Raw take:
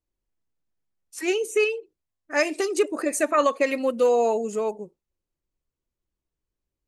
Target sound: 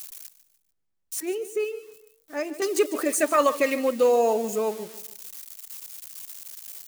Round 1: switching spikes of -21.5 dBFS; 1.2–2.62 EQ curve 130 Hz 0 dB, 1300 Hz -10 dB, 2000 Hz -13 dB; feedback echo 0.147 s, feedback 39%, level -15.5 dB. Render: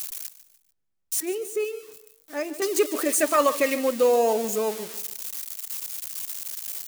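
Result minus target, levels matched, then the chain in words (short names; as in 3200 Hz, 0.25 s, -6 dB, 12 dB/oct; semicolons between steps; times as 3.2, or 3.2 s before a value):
switching spikes: distortion +7 dB
switching spikes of -28.5 dBFS; 1.2–2.62 EQ curve 130 Hz 0 dB, 1300 Hz -10 dB, 2000 Hz -13 dB; feedback echo 0.147 s, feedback 39%, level -15.5 dB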